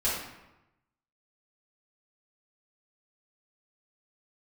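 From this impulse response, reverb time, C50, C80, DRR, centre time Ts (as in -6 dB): 1.0 s, 0.5 dB, 4.0 dB, -10.5 dB, 61 ms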